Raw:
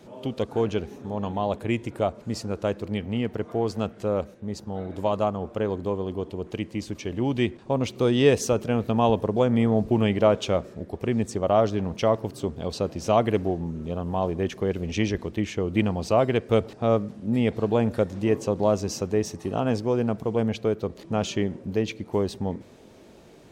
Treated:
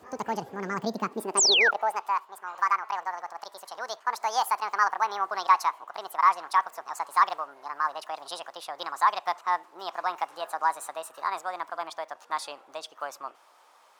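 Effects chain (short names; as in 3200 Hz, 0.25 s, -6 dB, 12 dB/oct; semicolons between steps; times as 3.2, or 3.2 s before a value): speed glide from 198% -> 138%; high-pass sweep 75 Hz -> 1100 Hz, 0.33–2.15; painted sound fall, 1.37–1.71, 1300–8900 Hz -15 dBFS; gain -5.5 dB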